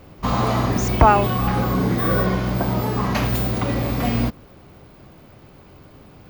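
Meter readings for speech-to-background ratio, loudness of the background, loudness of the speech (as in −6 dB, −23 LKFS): 2.5 dB, −21.5 LKFS, −19.0 LKFS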